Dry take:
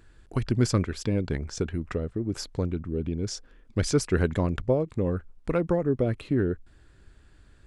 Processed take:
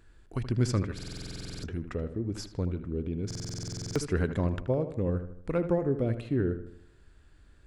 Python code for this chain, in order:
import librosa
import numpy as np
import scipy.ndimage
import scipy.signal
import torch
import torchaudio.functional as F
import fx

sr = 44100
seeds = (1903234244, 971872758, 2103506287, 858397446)

y = fx.hpss(x, sr, part='percussive', gain_db=-4)
y = fx.echo_filtered(y, sr, ms=78, feedback_pct=48, hz=3200.0, wet_db=-10.5)
y = fx.buffer_glitch(y, sr, at_s=(0.94, 3.26), block=2048, repeats=14)
y = y * librosa.db_to_amplitude(-2.0)